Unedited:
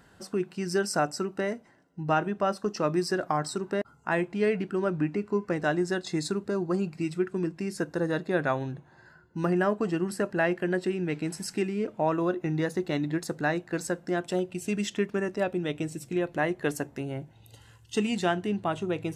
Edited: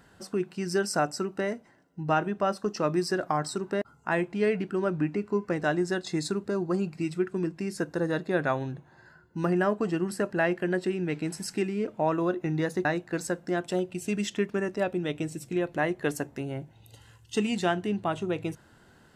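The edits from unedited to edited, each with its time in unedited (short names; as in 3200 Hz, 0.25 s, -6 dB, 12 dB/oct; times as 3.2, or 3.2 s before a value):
12.85–13.45 cut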